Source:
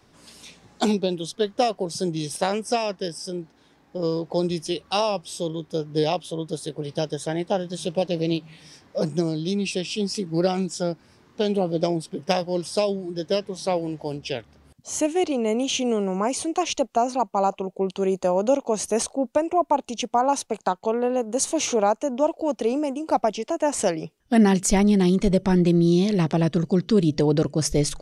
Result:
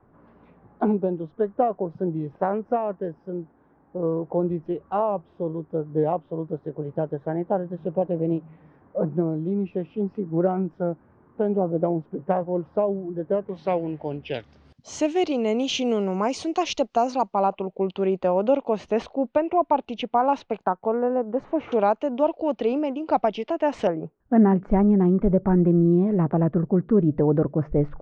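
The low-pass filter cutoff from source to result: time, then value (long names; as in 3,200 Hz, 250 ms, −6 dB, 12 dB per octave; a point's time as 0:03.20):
low-pass filter 24 dB per octave
1,400 Hz
from 0:13.49 2,600 Hz
from 0:14.34 5,400 Hz
from 0:17.34 3,200 Hz
from 0:20.64 1,700 Hz
from 0:21.72 3,600 Hz
from 0:23.87 1,400 Hz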